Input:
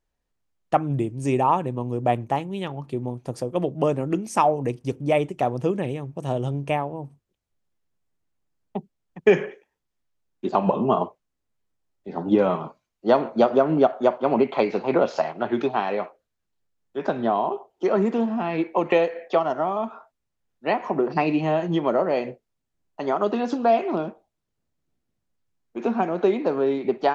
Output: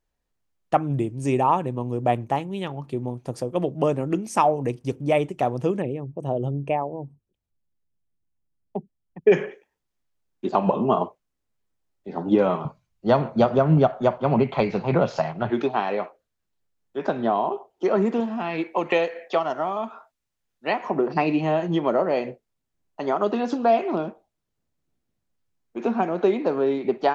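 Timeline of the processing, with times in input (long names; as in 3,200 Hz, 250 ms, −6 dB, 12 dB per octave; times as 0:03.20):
0:05.82–0:09.32: spectral envelope exaggerated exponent 1.5
0:12.65–0:15.50: low shelf with overshoot 200 Hz +11.5 dB, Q 1.5
0:18.20–0:20.84: tilt shelving filter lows −3.5 dB, about 1,300 Hz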